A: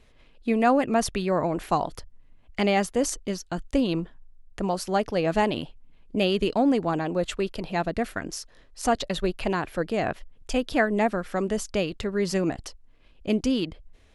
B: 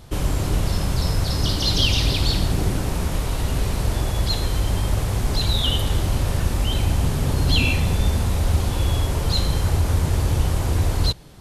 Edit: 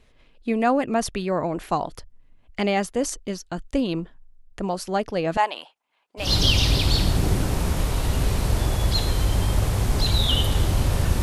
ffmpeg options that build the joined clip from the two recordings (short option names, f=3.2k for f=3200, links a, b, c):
-filter_complex "[0:a]asettb=1/sr,asplit=3[a][b][c];[a]atrim=end=5.374[d];[b]atrim=start=5.37:end=6.31,asetpts=PTS-STARTPTS,afade=t=in:d=0.004:c=qsin,afade=t=out:st=0.936:d=0.004:c=qsin,highpass=f=880:t=q:w=1.9[e];[c]atrim=start=6.306[f];[d][e]acrossfade=d=0.004:c1=hsin:c2=qsin[g];[g][f]acrossfade=d=0.004:c1=qsin:c2=hsin,apad=whole_dur=11.22,atrim=end=11.22,atrim=end=6.31,asetpts=PTS-STARTPTS[h];[1:a]atrim=start=1.52:end=6.57,asetpts=PTS-STARTPTS[i];[h][i]acrossfade=d=0.14:c1=tri:c2=tri"